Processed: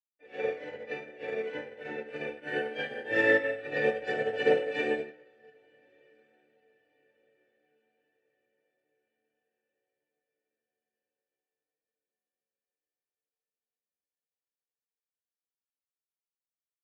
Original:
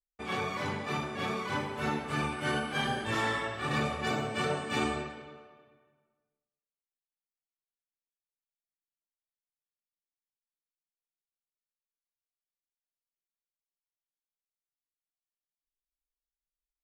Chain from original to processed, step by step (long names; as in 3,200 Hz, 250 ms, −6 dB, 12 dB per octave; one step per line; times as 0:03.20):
formant filter e
high-shelf EQ 7,200 Hz +5.5 dB
on a send: feedback delay with all-pass diffusion 1,265 ms, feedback 43%, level −14.5 dB
on the sum: feedback delay network reverb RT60 0.56 s, low-frequency decay 1.4×, high-frequency decay 0.45×, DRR −8.5 dB
expander for the loud parts 2.5 to 1, over −44 dBFS
level +8.5 dB